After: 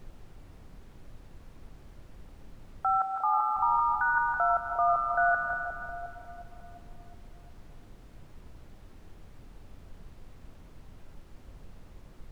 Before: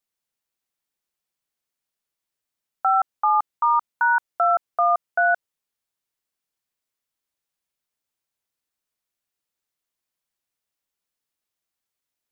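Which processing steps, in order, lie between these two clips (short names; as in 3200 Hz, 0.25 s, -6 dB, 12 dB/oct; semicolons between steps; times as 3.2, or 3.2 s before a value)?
split-band echo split 810 Hz, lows 0.357 s, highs 0.158 s, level -3.5 dB; digital reverb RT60 2.1 s, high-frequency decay 0.8×, pre-delay 80 ms, DRR 7.5 dB; added noise brown -39 dBFS; 2.97–3.55 HPF 330 Hz -> 470 Hz 6 dB/oct; gain -7.5 dB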